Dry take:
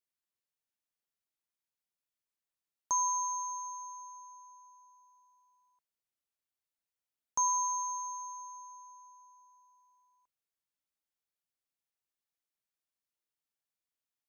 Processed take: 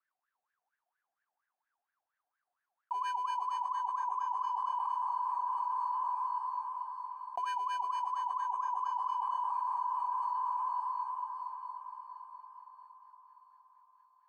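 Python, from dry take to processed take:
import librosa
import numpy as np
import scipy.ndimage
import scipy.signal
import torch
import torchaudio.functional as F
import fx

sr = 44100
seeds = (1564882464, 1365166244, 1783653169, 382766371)

y = scipy.signal.sosfilt(scipy.signal.cheby1(2, 1.0, [210.0, 4900.0], 'bandpass', fs=sr, output='sos'), x)
y = fx.high_shelf(y, sr, hz=2600.0, db=-7.0)
y = fx.leveller(y, sr, passes=5)
y = fx.wah_lfo(y, sr, hz=4.3, low_hz=710.0, high_hz=1700.0, q=19.0)
y = fx.echo_diffused(y, sr, ms=455, feedback_pct=56, wet_db=-15.5)
y = fx.env_flatten(y, sr, amount_pct=100)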